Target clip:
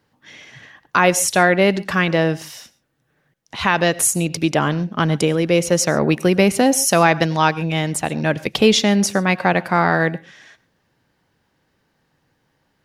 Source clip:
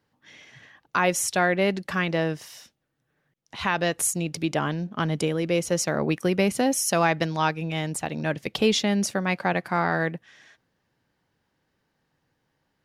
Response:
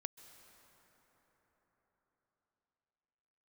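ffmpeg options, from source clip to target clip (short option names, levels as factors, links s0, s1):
-filter_complex "[0:a]asplit=2[s0][s1];[1:a]atrim=start_sample=2205,afade=t=out:st=0.28:d=0.01,atrim=end_sample=12789,asetrate=70560,aresample=44100[s2];[s1][s2]afir=irnorm=-1:irlink=0,volume=3.55[s3];[s0][s3]amix=inputs=2:normalize=0"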